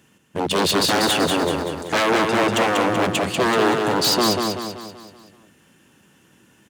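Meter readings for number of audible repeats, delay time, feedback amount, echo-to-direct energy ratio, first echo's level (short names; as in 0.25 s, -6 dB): 5, 0.191 s, 48%, -3.0 dB, -4.0 dB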